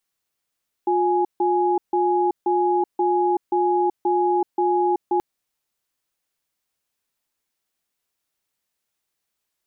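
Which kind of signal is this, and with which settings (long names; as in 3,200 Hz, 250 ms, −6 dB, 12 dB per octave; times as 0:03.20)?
tone pair in a cadence 356 Hz, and 834 Hz, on 0.38 s, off 0.15 s, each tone −19.5 dBFS 4.33 s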